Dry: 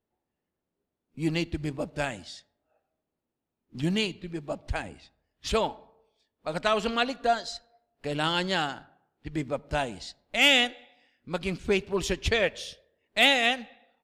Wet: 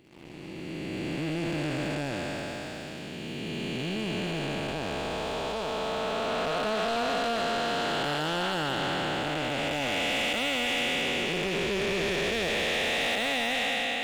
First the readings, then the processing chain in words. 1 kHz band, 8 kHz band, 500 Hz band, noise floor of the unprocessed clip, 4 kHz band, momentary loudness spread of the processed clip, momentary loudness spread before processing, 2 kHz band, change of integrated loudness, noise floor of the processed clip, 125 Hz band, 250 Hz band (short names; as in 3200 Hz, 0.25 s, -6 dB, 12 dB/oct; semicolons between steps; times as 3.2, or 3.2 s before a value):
+1.0 dB, +1.0 dB, +0.5 dB, under -85 dBFS, -1.0 dB, 10 LU, 19 LU, 0.0 dB, -2.0 dB, -39 dBFS, 0.0 dB, +0.5 dB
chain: time blur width 1.27 s; de-esser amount 100%; low shelf 280 Hz -7.5 dB; in parallel at -10.5 dB: overloaded stage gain 33 dB; on the sum: sample leveller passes 3; reverse; upward compressor, threshold -33 dBFS; reverse; tone controls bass 0 dB, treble -4 dB